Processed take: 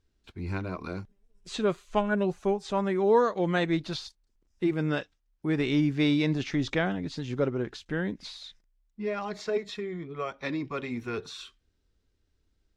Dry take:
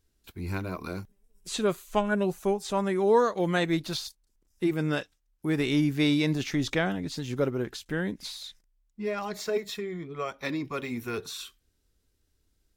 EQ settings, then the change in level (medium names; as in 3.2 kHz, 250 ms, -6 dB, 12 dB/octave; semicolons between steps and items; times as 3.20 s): distance through air 100 m; 0.0 dB